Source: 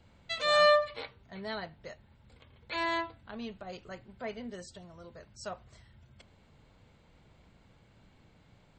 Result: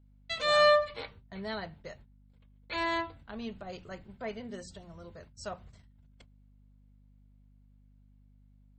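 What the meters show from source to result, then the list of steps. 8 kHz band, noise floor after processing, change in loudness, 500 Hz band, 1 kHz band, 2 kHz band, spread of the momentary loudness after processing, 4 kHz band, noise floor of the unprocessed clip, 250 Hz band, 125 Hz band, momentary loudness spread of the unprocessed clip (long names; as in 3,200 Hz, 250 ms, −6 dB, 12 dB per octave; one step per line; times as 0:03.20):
0.0 dB, −61 dBFS, 0.0 dB, +0.5 dB, 0.0 dB, 0.0 dB, 25 LU, 0.0 dB, −63 dBFS, +1.5 dB, +2.5 dB, 26 LU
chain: noise gate −54 dBFS, range −24 dB
low-shelf EQ 200 Hz +6 dB
mains-hum notches 60/120/180/240 Hz
mains hum 50 Hz, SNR 25 dB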